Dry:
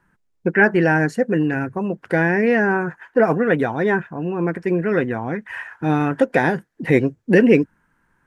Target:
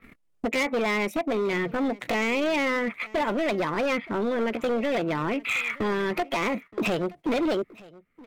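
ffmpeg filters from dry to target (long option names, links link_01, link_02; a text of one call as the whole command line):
ffmpeg -i in.wav -af "acompressor=mode=upward:threshold=-20dB:ratio=2.5,adynamicequalizer=threshold=0.00282:dfrequency=5900:dqfactor=2:tfrequency=5900:tqfactor=2:attack=5:release=100:ratio=0.375:range=3:mode=cutabove:tftype=bell,agate=range=-31dB:threshold=-36dB:ratio=16:detection=peak,acompressor=threshold=-27dB:ratio=3,asoftclip=type=hard:threshold=-27dB,asetrate=58866,aresample=44100,atempo=0.749154,aecho=1:1:922:0.0794,volume=5dB" out.wav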